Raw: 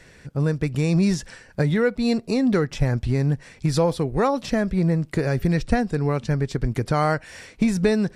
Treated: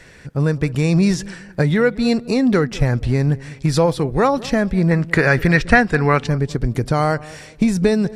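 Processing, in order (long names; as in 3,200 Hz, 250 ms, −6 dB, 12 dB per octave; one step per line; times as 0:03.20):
parametric band 1,700 Hz +2 dB 2 octaves, from 0:04.91 +13.5 dB, from 0:06.27 −2.5 dB
feedback echo with a low-pass in the loop 201 ms, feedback 39%, low-pass 860 Hz, level −18 dB
level +4 dB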